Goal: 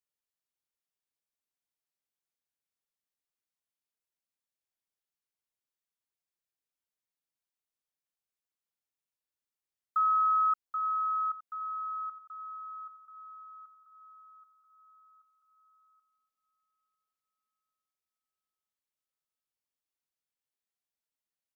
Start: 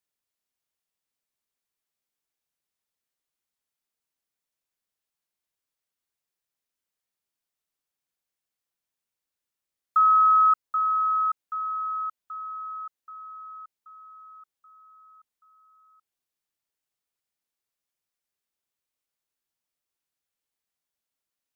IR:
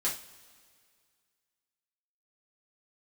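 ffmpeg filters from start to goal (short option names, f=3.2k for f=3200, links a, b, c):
-filter_complex "[0:a]asplit=2[a][b];[b]adelay=868,lowpass=f=1.2k:p=1,volume=-16dB,asplit=2[c][d];[d]adelay=868,lowpass=f=1.2k:p=1,volume=0.54,asplit=2[e][f];[f]adelay=868,lowpass=f=1.2k:p=1,volume=0.54,asplit=2[g][h];[h]adelay=868,lowpass=f=1.2k:p=1,volume=0.54,asplit=2[i][j];[j]adelay=868,lowpass=f=1.2k:p=1,volume=0.54[k];[a][c][e][g][i][k]amix=inputs=6:normalize=0,volume=-8dB"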